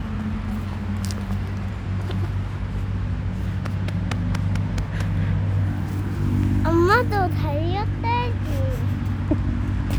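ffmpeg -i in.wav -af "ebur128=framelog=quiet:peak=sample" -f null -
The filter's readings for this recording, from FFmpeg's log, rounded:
Integrated loudness:
  I:         -24.0 LUFS
  Threshold: -34.0 LUFS
Loudness range:
  LRA:         5.5 LU
  Threshold: -43.6 LUFS
  LRA low:   -27.2 LUFS
  LRA high:  -21.7 LUFS
Sample peak:
  Peak:       -5.3 dBFS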